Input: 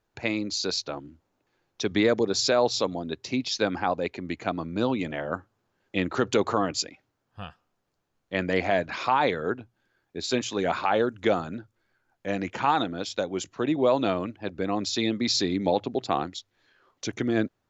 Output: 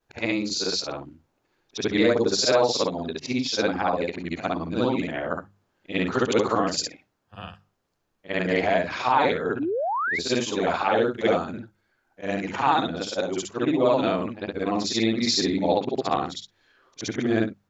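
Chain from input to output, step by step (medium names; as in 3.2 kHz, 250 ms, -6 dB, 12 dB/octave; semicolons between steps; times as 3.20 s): short-time spectra conjugated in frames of 143 ms; hum notches 50/100/150/200 Hz; painted sound rise, 9.59–10.19 s, 260–2300 Hz -31 dBFS; trim +5.5 dB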